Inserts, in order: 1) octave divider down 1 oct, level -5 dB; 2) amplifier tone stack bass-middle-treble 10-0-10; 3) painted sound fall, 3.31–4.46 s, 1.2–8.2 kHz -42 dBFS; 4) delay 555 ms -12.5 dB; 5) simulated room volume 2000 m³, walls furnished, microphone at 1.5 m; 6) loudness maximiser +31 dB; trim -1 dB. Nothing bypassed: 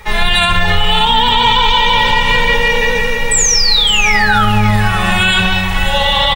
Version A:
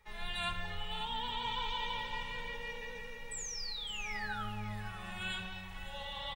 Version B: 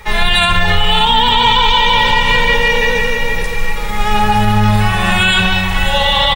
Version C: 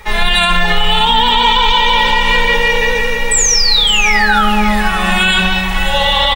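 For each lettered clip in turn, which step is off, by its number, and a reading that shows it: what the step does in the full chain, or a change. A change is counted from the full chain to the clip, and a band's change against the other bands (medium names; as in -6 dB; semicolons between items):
6, crest factor change +8.5 dB; 3, 8 kHz band -13.5 dB; 1, 125 Hz band -7.0 dB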